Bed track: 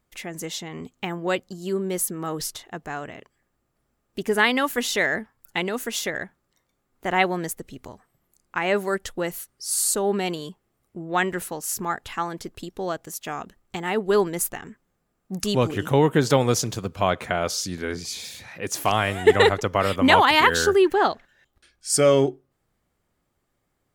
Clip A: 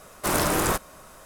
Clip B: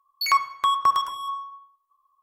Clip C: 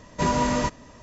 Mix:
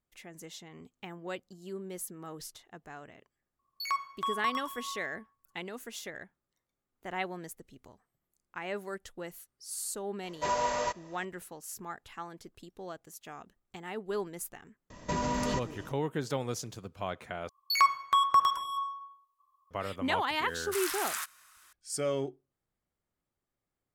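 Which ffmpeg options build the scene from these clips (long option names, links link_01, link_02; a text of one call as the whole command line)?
ffmpeg -i bed.wav -i cue0.wav -i cue1.wav -i cue2.wav -filter_complex "[2:a]asplit=2[link_01][link_02];[3:a]asplit=2[link_03][link_04];[0:a]volume=-14.5dB[link_05];[link_03]lowshelf=frequency=380:width_type=q:width=1.5:gain=-12.5[link_06];[link_04]acompressor=threshold=-25dB:ratio=6:attack=3.2:release=140:knee=1:detection=peak[link_07];[1:a]highpass=frequency=1300:width=0.5412,highpass=frequency=1300:width=1.3066[link_08];[link_05]asplit=2[link_09][link_10];[link_09]atrim=end=17.494[link_11];[link_02]atrim=end=2.22,asetpts=PTS-STARTPTS,volume=-3.5dB[link_12];[link_10]atrim=start=19.706[link_13];[link_01]atrim=end=2.22,asetpts=PTS-STARTPTS,volume=-12dB,afade=type=in:duration=0.004:curve=hsin,afade=type=out:start_time=2.216:duration=0.004:curve=hsin,adelay=3590[link_14];[link_06]atrim=end=1.02,asetpts=PTS-STARTPTS,volume=-6.5dB,afade=type=in:duration=0.004:curve=hsin,afade=type=out:start_time=1.016:duration=0.004:curve=hsin,adelay=10230[link_15];[link_07]atrim=end=1.02,asetpts=PTS-STARTPTS,volume=-2dB,afade=type=in:duration=0.004:curve=hsin,afade=type=out:start_time=1.016:duration=0.004:curve=hsin,adelay=14900[link_16];[link_08]atrim=end=1.25,asetpts=PTS-STARTPTS,volume=-7.5dB,afade=type=in:duration=0.004:curve=hsin,afade=type=out:start_time=1.246:duration=0.004:curve=hsin,adelay=20480[link_17];[link_11][link_12]acrossfade=duration=0.004:curve1=hsin:curve2=hsin[link_18];[link_18][link_13]acrossfade=duration=0.004:curve1=hsin:curve2=hsin[link_19];[link_19][link_14][link_15][link_16][link_17]amix=inputs=5:normalize=0" out.wav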